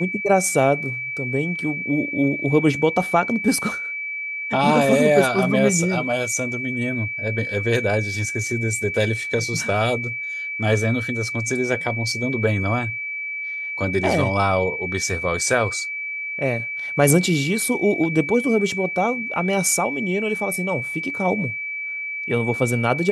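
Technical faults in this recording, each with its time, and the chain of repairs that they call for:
whine 2.3 kHz -26 dBFS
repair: band-stop 2.3 kHz, Q 30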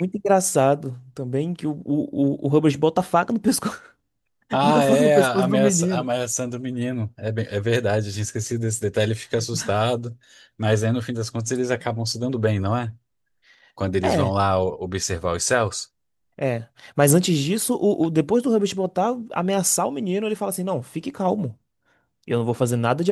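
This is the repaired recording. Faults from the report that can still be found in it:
nothing left

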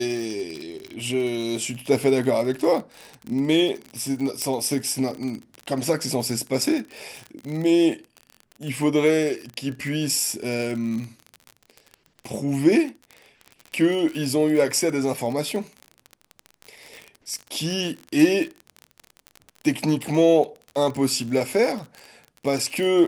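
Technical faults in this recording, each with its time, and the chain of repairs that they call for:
crackle 41 per s -28 dBFS
4.42 s: pop -10 dBFS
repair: de-click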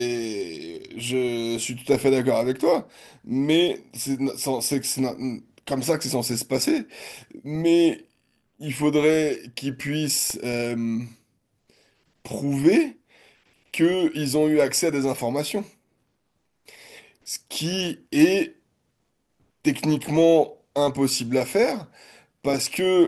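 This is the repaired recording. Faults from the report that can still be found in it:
nothing left

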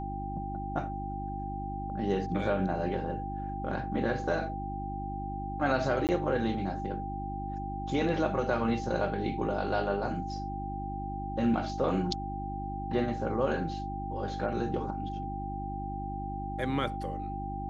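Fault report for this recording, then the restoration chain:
hum 50 Hz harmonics 7 -38 dBFS
whine 790 Hz -37 dBFS
6.07–6.09 s: dropout 18 ms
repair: de-hum 50 Hz, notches 7; band-stop 790 Hz, Q 30; interpolate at 6.07 s, 18 ms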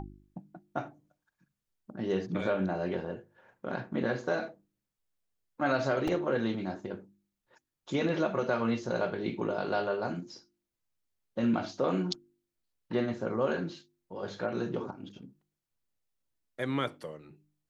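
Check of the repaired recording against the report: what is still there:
nothing left

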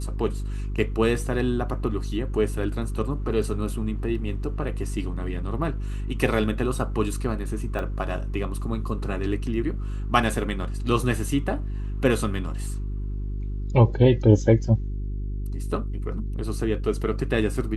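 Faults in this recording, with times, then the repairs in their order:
hum 50 Hz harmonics 8 -29 dBFS
7.79 s: dropout 2.1 ms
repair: de-hum 50 Hz, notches 8; interpolate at 7.79 s, 2.1 ms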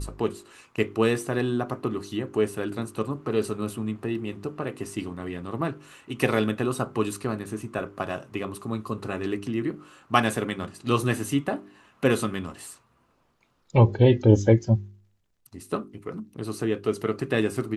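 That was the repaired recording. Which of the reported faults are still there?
nothing left

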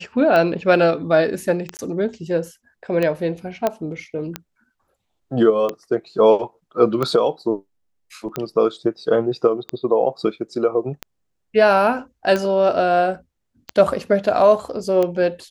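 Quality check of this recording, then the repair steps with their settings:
tick 45 rpm -10 dBFS
1.77–1.79 s: dropout 19 ms
3.67 s: pop -7 dBFS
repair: de-click; interpolate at 1.77 s, 19 ms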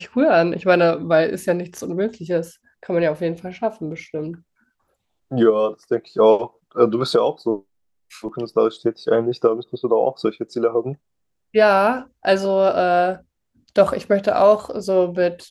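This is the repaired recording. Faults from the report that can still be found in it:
nothing left

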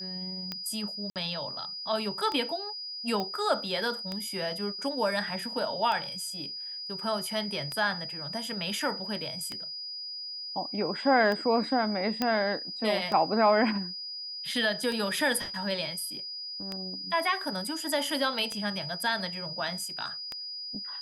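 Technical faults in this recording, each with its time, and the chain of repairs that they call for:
tick 33 1/3 rpm -19 dBFS
whine 4.9 kHz -36 dBFS
1.10–1.16 s: dropout 58 ms
3.20 s: pop -19 dBFS
12.22 s: pop -13 dBFS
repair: de-click; band-stop 4.9 kHz, Q 30; interpolate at 1.10 s, 58 ms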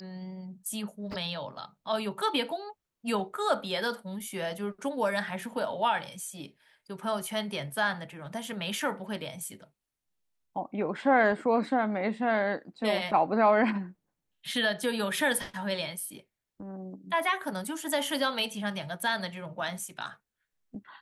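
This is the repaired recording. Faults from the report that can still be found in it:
nothing left

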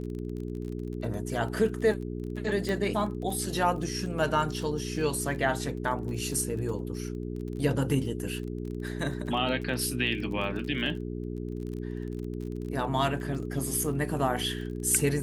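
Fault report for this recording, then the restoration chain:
crackle 29 per s -36 dBFS
hum 60 Hz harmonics 7 -35 dBFS
2.69 s: pop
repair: de-click; de-hum 60 Hz, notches 7

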